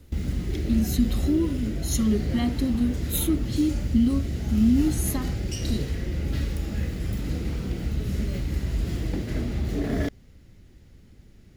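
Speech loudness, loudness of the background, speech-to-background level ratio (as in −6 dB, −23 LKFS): −26.0 LKFS, −29.5 LKFS, 3.5 dB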